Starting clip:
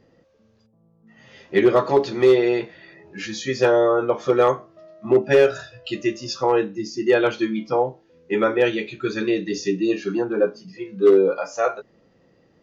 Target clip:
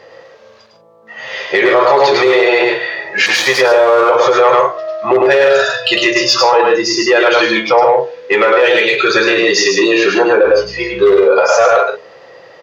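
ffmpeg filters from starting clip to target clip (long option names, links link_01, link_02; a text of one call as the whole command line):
ffmpeg -i in.wav -filter_complex "[0:a]asettb=1/sr,asplit=3[link_01][link_02][link_03];[link_01]atrim=end=3.264[link_04];[link_02]atrim=start=3.26:end=4.01,asetpts=PTS-STARTPTS,afade=type=in:duration=0.004:curve=qsin,afade=type=out:start_time=0.746:duration=0.004:curve=qsin,aeval=exprs='sgn(val(0))*max(abs(val(0))-0.0178,0)':channel_layout=same[link_05];[link_03]atrim=start=4.006[link_06];[link_04][link_05]acrossfade=duration=0.004:curve1=hsin:curve2=qsin[link_07];[link_07][link_06]acrossfade=duration=0.004:curve1=qsin:curve2=hsin,acompressor=threshold=-18dB:ratio=6,bandreject=frequency=60:width_type=h:width=6,bandreject=frequency=120:width_type=h:width=6,bandreject=frequency=180:width_type=h:width=6,bandreject=frequency=240:width_type=h:width=6,bandreject=frequency=300:width_type=h:width=6,bandreject=frequency=360:width_type=h:width=6,bandreject=frequency=420:width_type=h:width=6,bandreject=frequency=480:width_type=h:width=6,asplit=2[link_08][link_09];[link_09]highpass=frequency=720:poles=1,volume=12dB,asoftclip=type=tanh:threshold=-10.5dB[link_10];[link_08][link_10]amix=inputs=2:normalize=0,lowpass=frequency=4900:poles=1,volume=-6dB,bass=frequency=250:gain=-7,treble=frequency=4000:gain=3,asplit=2[link_11][link_12];[link_12]aecho=0:1:105|148.7:0.631|0.282[link_13];[link_11][link_13]amix=inputs=2:normalize=0,asettb=1/sr,asplit=3[link_14][link_15][link_16];[link_14]atrim=end=10.444[link_17];[link_15]atrim=start=10.44:end=11.24,asetpts=PTS-STARTPTS,afade=type=in:duration=0.004:curve=qsin,afade=type=out:start_time=0.796:duration=0.004:curve=qsin,aeval=exprs='val(0)+0.00447*(sin(2*PI*60*n/s)+sin(2*PI*2*60*n/s)/2+sin(2*PI*3*60*n/s)/3+sin(2*PI*4*60*n/s)/4+sin(2*PI*5*60*n/s)/5)':channel_layout=same[link_18];[link_16]atrim=start=11.236[link_19];[link_17][link_18]acrossfade=duration=0.004:curve1=hsin:curve2=qsin[link_20];[link_20][link_19]acrossfade=duration=0.004:curve1=qsin:curve2=hsin,equalizer=frequency=125:width_type=o:width=1:gain=8,equalizer=frequency=250:width_type=o:width=1:gain=-9,equalizer=frequency=500:width_type=o:width=1:gain=10,equalizer=frequency=1000:width_type=o:width=1:gain=6,equalizer=frequency=2000:width_type=o:width=1:gain=6,equalizer=frequency=4000:width_type=o:width=1:gain=5,alimiter=level_in=10.5dB:limit=-1dB:release=50:level=0:latency=1,volume=-1dB" out.wav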